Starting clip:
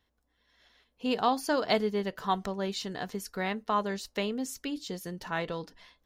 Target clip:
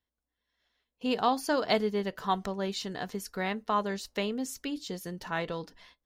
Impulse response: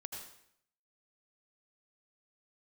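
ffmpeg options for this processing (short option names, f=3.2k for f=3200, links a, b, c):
-af "agate=range=-13dB:threshold=-58dB:ratio=16:detection=peak"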